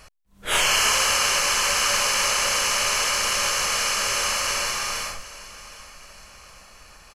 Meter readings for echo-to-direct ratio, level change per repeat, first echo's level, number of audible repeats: -16.5 dB, -7.0 dB, -17.5 dB, 3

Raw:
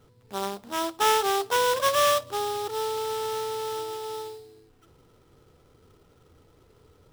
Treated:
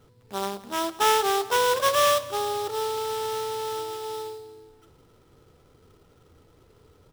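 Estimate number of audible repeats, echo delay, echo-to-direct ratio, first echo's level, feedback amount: 3, 172 ms, -18.0 dB, -19.5 dB, 55%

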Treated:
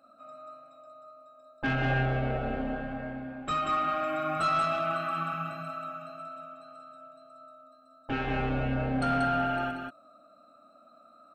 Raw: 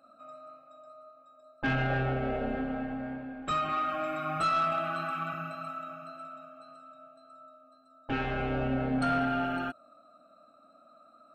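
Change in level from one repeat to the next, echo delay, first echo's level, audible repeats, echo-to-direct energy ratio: no regular repeats, 185 ms, -4.5 dB, 1, -4.5 dB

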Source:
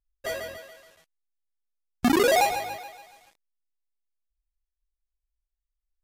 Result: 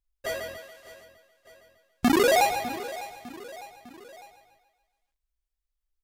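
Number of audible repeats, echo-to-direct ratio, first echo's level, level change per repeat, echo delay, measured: 3, -14.5 dB, -16.0 dB, -5.5 dB, 603 ms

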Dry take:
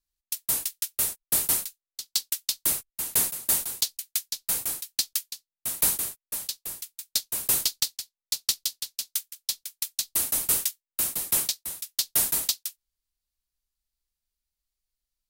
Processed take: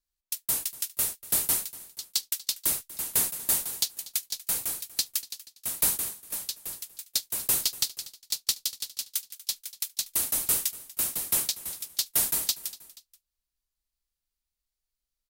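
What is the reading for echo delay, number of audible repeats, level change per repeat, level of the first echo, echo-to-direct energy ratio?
240 ms, 2, -5.5 dB, -18.5 dB, -17.5 dB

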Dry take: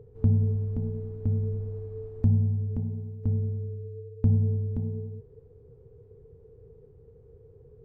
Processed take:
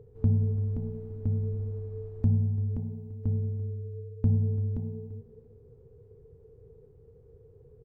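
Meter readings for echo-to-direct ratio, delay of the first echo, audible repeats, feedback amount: -16.5 dB, 340 ms, 2, 28%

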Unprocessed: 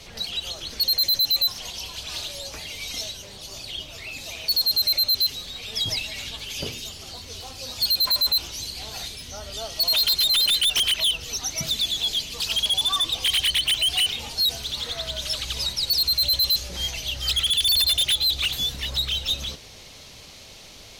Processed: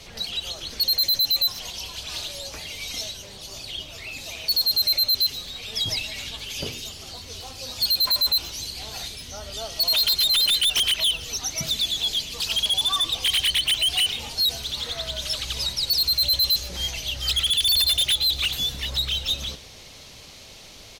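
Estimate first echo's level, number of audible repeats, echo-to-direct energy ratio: -21.0 dB, 2, -20.5 dB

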